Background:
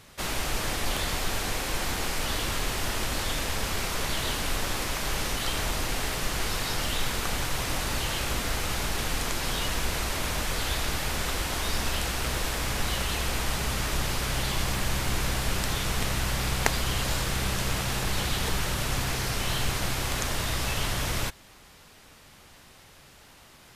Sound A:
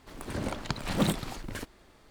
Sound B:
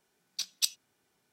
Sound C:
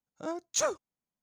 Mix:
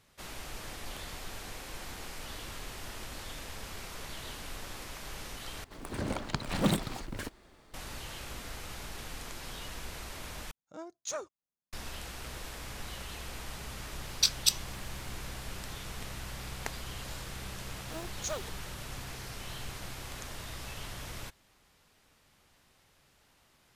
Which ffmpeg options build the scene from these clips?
-filter_complex "[3:a]asplit=2[a][b];[0:a]volume=-13.5dB[c];[2:a]dynaudnorm=f=100:g=3:m=16.5dB[d];[b]acrusher=bits=7:mix=0:aa=0.000001[e];[c]asplit=3[f][g][h];[f]atrim=end=5.644[i];[1:a]atrim=end=2.1,asetpts=PTS-STARTPTS,volume=-1dB[j];[g]atrim=start=7.736:end=10.514[k];[a]atrim=end=1.22,asetpts=PTS-STARTPTS,volume=-9dB[l];[h]atrim=start=11.726[m];[d]atrim=end=1.32,asetpts=PTS-STARTPTS,volume=-5.5dB,afade=t=in:d=0.004:c=hsin,afade=t=out:st=1.316:d=0.004:c=hsin,adelay=13840[n];[e]atrim=end=1.22,asetpts=PTS-STARTPTS,volume=-8.5dB,afade=t=in:d=0.004:c=hsin,afade=t=out:st=1.216:d=0.004:c=hsin,adelay=17680[o];[i][j]acrossfade=d=0.004:c1=hsin:c2=hsin[p];[p][k]acrossfade=d=0.004:c1=hsin:c2=hsin[q];[q][l]acrossfade=d=0.004:c1=hsin:c2=hsin[r];[r][m]acrossfade=d=0.004:c1=hsin:c2=hsin[s];[s][n][o]amix=inputs=3:normalize=0"

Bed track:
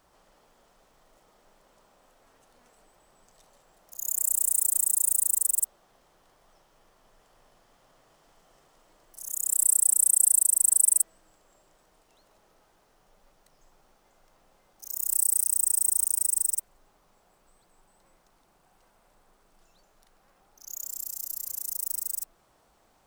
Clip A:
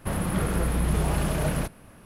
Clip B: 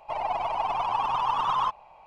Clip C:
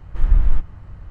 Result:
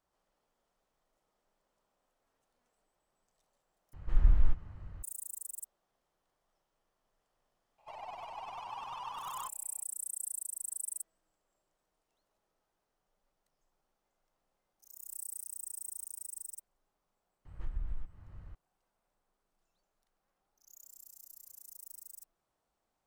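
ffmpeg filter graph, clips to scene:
-filter_complex "[3:a]asplit=2[a][b];[0:a]volume=-19dB[c];[2:a]crystalizer=i=3:c=0[d];[b]acompressor=threshold=-18dB:ratio=10:attack=12:release=323:knee=6:detection=rms[e];[c]asplit=2[f][g];[f]atrim=end=3.934[h];[a]atrim=end=1.1,asetpts=PTS-STARTPTS,volume=-9.5dB[i];[g]atrim=start=5.026[j];[d]atrim=end=2.06,asetpts=PTS-STARTPTS,volume=-17.5dB,afade=t=in:d=0.004:c=hsin,afade=t=out:st=2.056:d=0.004:c=hsin,adelay=343098S[k];[e]atrim=end=1.1,asetpts=PTS-STARTPTS,volume=-12.5dB,afade=t=in:d=0.004:c=hsin,afade=t=out:st=1.096:d=0.004:c=hsin,adelay=17450[l];[h][i]acrossfade=d=0.004:c1=hsin:c2=hsin[m];[m][j]acrossfade=d=0.004:c1=hsin:c2=hsin[n];[n][k][l]amix=inputs=3:normalize=0"

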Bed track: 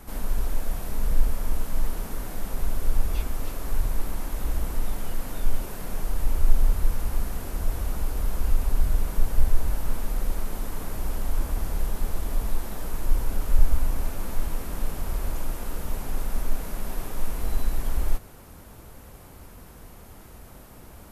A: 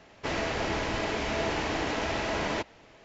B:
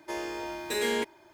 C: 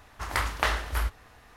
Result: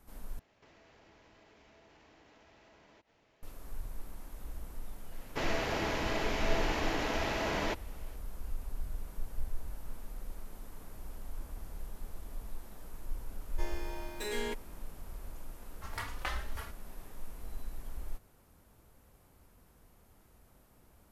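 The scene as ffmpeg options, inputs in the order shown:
-filter_complex "[1:a]asplit=2[a][b];[0:a]volume=-16.5dB[c];[a]acompressor=threshold=-45dB:ratio=6:attack=3.2:release=140:knee=1:detection=peak[d];[3:a]asplit=2[e][f];[f]adelay=3.5,afreqshift=1.6[g];[e][g]amix=inputs=2:normalize=1[h];[c]asplit=2[i][j];[i]atrim=end=0.394[k];[d]atrim=end=3.04,asetpts=PTS-STARTPTS,volume=-14.5dB[l];[j]atrim=start=3.426[m];[b]atrim=end=3.04,asetpts=PTS-STARTPTS,volume=-3.5dB,afade=t=in:d=0.004:c=hsin,afade=t=out:st=3.036:d=0.004:c=hsin,adelay=5120[n];[2:a]atrim=end=1.33,asetpts=PTS-STARTPTS,volume=-8.5dB,afade=t=in:d=0.004:c=hsin,afade=t=out:st=1.326:d=0.004:c=hsin,adelay=13500[o];[h]atrim=end=1.56,asetpts=PTS-STARTPTS,volume=-9dB,afade=t=in:d=0.004:c=hsin,afade=t=out:st=1.556:d=0.004:c=hsin,adelay=15620[p];[k][l]acrossfade=d=0.004:c1=hsin:c2=hsin[q];[q][m]acrossfade=d=0.004:c1=hsin:c2=hsin[r];[r][n][o][p]amix=inputs=4:normalize=0"

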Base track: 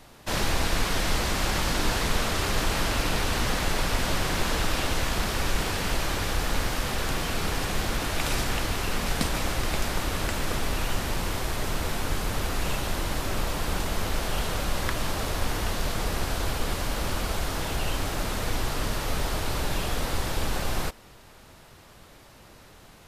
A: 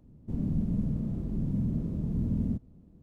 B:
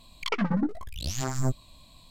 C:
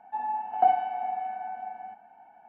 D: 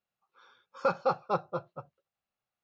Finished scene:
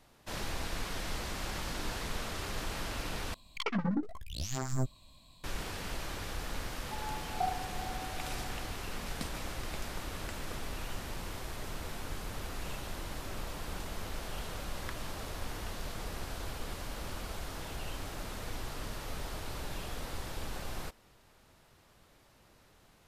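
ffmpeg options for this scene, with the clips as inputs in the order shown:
-filter_complex "[0:a]volume=-12dB,asplit=2[a][b];[a]atrim=end=3.344[c];[2:a]atrim=end=2.1,asetpts=PTS-STARTPTS,volume=-5.5dB[d];[b]atrim=start=5.436[e];[3:a]atrim=end=2.48,asetpts=PTS-STARTPTS,volume=-12.5dB,afade=t=in:d=0.004:c=hsin,afade=t=out:st=2.476:d=0.004:c=hsin,adelay=6780[f];[c][d]acrossfade=d=0.004:c1=hsin:c2=hsin[g];[g][e]acrossfade=d=0.004:c1=hsin:c2=hsin[h];[h][f]amix=inputs=2:normalize=0"

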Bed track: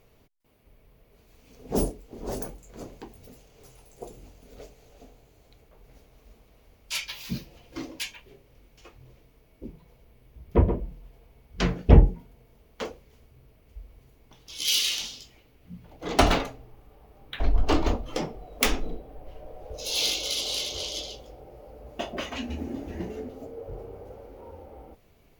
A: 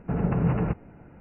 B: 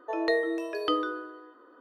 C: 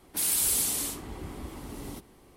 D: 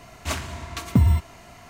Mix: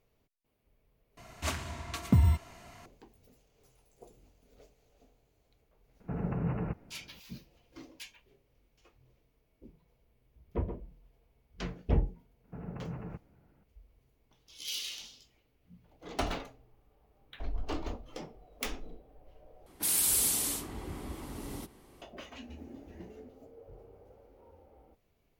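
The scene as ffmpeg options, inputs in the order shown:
-filter_complex "[1:a]asplit=2[a][b];[0:a]volume=-13.5dB,asplit=3[c][d][e];[c]atrim=end=1.174[f];[4:a]atrim=end=1.69,asetpts=PTS-STARTPTS,volume=-6dB[g];[d]atrim=start=2.856:end=19.664[h];[3:a]atrim=end=2.36,asetpts=PTS-STARTPTS,volume=-1.5dB[i];[e]atrim=start=22.016[j];[a]atrim=end=1.2,asetpts=PTS-STARTPTS,volume=-9dB,afade=t=in:d=0.004:c=hsin,afade=t=out:st=1.196:d=0.004:c=hsin,adelay=6000[k];[b]atrim=end=1.2,asetpts=PTS-STARTPTS,volume=-17dB,afade=t=in:d=0.004:c=hsin,afade=t=out:st=1.196:d=0.004:c=hsin,adelay=12440[l];[f][g]acrossfade=d=0.004:c1=hsin:c2=hsin[m];[m][h]acrossfade=d=0.004:c1=hsin:c2=hsin[n];[n][i]acrossfade=d=0.004:c1=hsin:c2=hsin[o];[o][j]acrossfade=d=0.004:c1=hsin:c2=hsin[p];[p][k][l]amix=inputs=3:normalize=0"

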